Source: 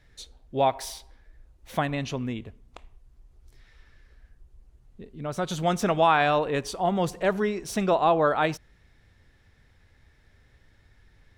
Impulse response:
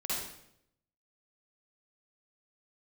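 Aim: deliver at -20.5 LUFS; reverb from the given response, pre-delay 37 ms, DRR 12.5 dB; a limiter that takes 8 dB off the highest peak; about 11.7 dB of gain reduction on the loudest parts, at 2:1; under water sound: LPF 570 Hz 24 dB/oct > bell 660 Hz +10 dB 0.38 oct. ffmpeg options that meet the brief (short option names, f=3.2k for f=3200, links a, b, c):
-filter_complex "[0:a]acompressor=threshold=-39dB:ratio=2,alimiter=level_in=5dB:limit=-24dB:level=0:latency=1,volume=-5dB,asplit=2[a][b];[1:a]atrim=start_sample=2205,adelay=37[c];[b][c]afir=irnorm=-1:irlink=0,volume=-17.5dB[d];[a][d]amix=inputs=2:normalize=0,lowpass=f=570:w=0.5412,lowpass=f=570:w=1.3066,equalizer=f=660:t=o:w=0.38:g=10,volume=19.5dB"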